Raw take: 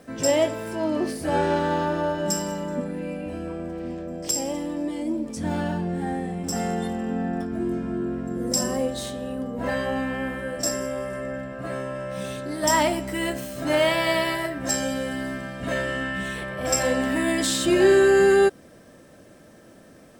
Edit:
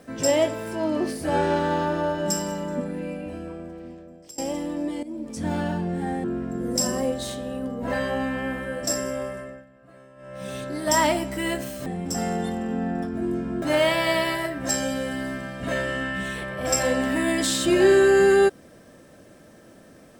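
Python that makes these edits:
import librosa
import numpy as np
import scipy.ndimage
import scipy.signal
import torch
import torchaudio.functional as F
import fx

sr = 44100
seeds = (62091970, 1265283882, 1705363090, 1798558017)

y = fx.edit(x, sr, fx.fade_out_to(start_s=3.0, length_s=1.38, floor_db=-23.0),
    fx.fade_in_from(start_s=5.03, length_s=0.38, floor_db=-13.5),
    fx.move(start_s=6.24, length_s=1.76, to_s=13.62),
    fx.fade_down_up(start_s=10.97, length_s=1.39, db=-19.0, fade_s=0.44), tone=tone)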